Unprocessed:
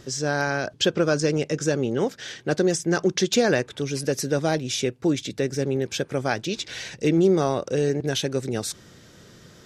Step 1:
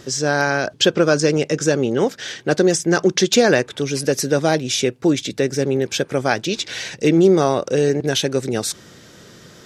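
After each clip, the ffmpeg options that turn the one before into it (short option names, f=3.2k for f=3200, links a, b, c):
-af "lowshelf=f=100:g=-9,volume=6.5dB"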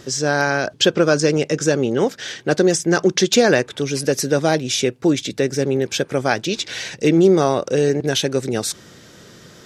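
-af anull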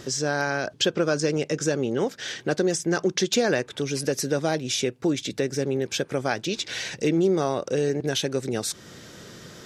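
-af "acompressor=threshold=-33dB:ratio=1.5"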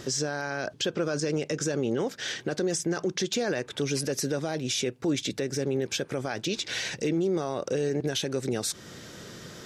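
-af "alimiter=limit=-19dB:level=0:latency=1:release=46"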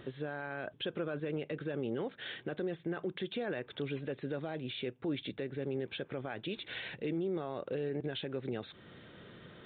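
-af "aresample=8000,aresample=44100,volume=-8.5dB"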